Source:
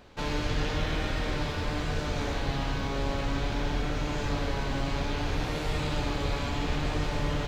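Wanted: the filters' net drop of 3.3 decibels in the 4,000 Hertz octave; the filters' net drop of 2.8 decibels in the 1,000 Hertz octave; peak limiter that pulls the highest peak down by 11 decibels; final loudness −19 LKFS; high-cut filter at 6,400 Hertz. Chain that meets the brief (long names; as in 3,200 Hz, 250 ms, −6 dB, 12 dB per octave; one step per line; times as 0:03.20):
low-pass filter 6,400 Hz
parametric band 1,000 Hz −3.5 dB
parametric band 4,000 Hz −3.5 dB
level +18.5 dB
brickwall limiter −9 dBFS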